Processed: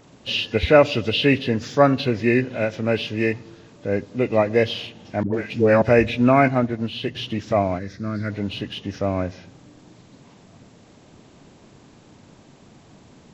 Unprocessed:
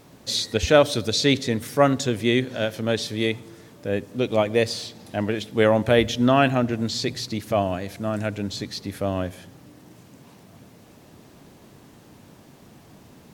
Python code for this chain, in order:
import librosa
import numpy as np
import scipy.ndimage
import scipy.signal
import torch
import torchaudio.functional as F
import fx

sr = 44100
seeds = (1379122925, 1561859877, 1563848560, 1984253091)

p1 = fx.freq_compress(x, sr, knee_hz=1400.0, ratio=1.5)
p2 = fx.dispersion(p1, sr, late='highs', ms=105.0, hz=620.0, at=(5.23, 5.82))
p3 = fx.fixed_phaser(p2, sr, hz=2900.0, stages=6, at=(7.78, 8.29), fade=0.02)
p4 = fx.backlash(p3, sr, play_db=-34.0)
p5 = p3 + (p4 * 10.0 ** (-10.0 / 20.0))
y = fx.upward_expand(p5, sr, threshold_db=-29.0, expansion=1.5, at=(6.48, 7.15))